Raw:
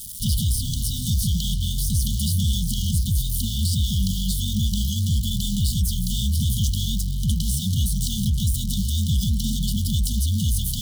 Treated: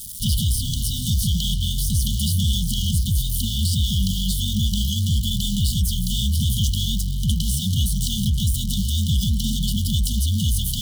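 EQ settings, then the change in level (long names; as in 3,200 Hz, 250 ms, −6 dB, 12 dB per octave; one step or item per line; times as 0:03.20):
dynamic equaliser 3,000 Hz, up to +6 dB, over −50 dBFS, Q 3.6
+1.0 dB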